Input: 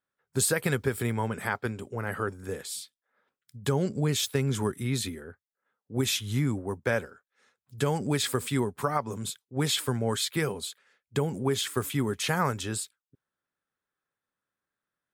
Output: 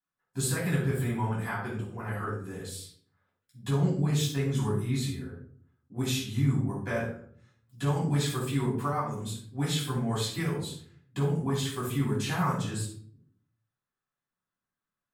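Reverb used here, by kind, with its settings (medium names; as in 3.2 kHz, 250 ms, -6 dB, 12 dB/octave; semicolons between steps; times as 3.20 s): simulated room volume 660 m³, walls furnished, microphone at 8.7 m; trim -14 dB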